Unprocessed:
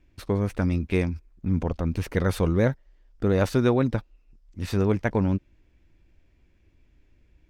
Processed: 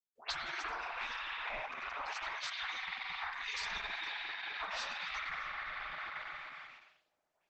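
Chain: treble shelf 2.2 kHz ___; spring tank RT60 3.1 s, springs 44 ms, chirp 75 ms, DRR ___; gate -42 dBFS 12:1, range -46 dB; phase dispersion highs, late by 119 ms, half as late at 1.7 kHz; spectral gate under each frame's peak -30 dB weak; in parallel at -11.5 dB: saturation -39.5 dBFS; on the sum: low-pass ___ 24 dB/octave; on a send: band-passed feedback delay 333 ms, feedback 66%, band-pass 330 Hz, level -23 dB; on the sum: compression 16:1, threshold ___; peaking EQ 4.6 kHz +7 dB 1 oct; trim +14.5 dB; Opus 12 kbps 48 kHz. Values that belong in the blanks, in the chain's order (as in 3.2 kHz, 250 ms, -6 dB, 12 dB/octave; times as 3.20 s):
-11 dB, -5.5 dB, 7.4 kHz, -52 dBFS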